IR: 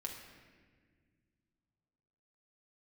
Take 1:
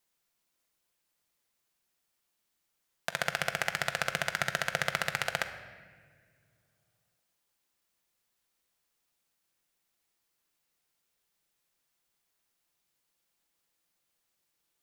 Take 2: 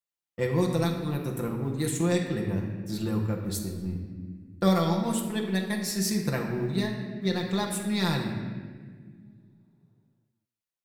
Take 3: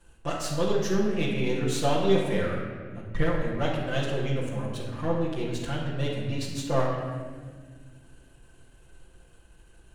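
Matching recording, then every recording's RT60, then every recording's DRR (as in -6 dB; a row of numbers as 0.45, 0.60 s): 2; 1.7, 1.7, 1.7 s; 6.5, -0.5, -6.5 dB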